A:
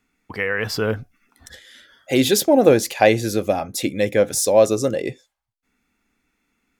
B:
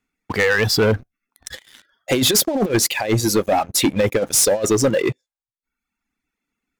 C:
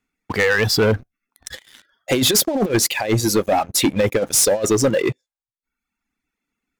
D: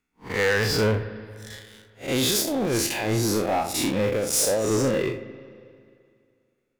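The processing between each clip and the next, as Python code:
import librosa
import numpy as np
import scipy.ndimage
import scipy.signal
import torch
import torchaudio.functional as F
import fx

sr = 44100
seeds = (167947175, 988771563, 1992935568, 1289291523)

y1 = fx.dereverb_blind(x, sr, rt60_s=1.1)
y1 = fx.over_compress(y1, sr, threshold_db=-19.0, ratio=-0.5)
y1 = fx.leveller(y1, sr, passes=3)
y1 = F.gain(torch.from_numpy(y1), -4.5).numpy()
y2 = y1
y3 = fx.spec_blur(y2, sr, span_ms=126.0)
y3 = fx.rev_spring(y3, sr, rt60_s=2.3, pass_ms=(37, 41, 47), chirp_ms=40, drr_db=14.0)
y3 = 10.0 ** (-16.0 / 20.0) * np.tanh(y3 / 10.0 ** (-16.0 / 20.0))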